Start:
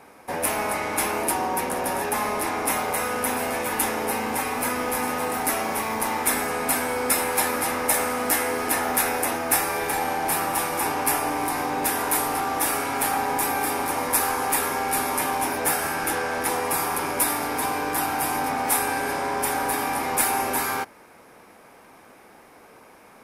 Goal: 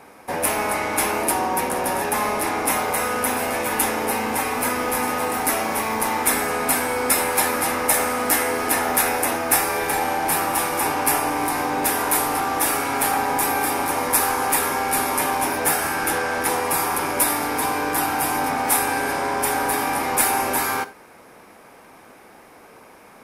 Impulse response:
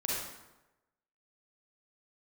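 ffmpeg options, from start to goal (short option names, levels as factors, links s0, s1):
-filter_complex "[0:a]asplit=2[s0][s1];[1:a]atrim=start_sample=2205,atrim=end_sample=4410[s2];[s1][s2]afir=irnorm=-1:irlink=0,volume=0.133[s3];[s0][s3]amix=inputs=2:normalize=0,volume=1.26"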